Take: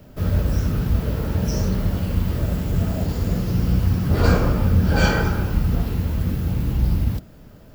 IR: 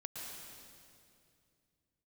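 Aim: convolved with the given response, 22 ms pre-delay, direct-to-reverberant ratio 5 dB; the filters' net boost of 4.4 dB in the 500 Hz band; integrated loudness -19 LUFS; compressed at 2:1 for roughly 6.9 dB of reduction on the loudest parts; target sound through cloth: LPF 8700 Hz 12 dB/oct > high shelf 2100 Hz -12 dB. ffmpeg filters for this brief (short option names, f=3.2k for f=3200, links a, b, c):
-filter_complex "[0:a]equalizer=f=500:t=o:g=6,acompressor=threshold=-23dB:ratio=2,asplit=2[a][b];[1:a]atrim=start_sample=2205,adelay=22[c];[b][c]afir=irnorm=-1:irlink=0,volume=-3.5dB[d];[a][d]amix=inputs=2:normalize=0,lowpass=8.7k,highshelf=f=2.1k:g=-12,volume=5dB"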